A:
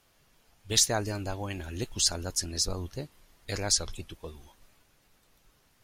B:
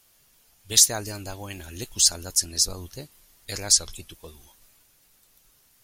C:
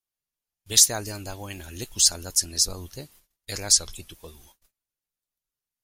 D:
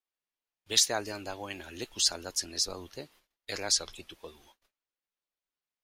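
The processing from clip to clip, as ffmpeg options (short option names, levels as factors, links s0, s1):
-af "crystalizer=i=3:c=0,volume=0.75"
-af "agate=range=0.0316:threshold=0.00224:ratio=16:detection=peak"
-filter_complex "[0:a]acrossover=split=250 4600:gain=0.224 1 0.178[s0][s1][s2];[s0][s1][s2]amix=inputs=3:normalize=0"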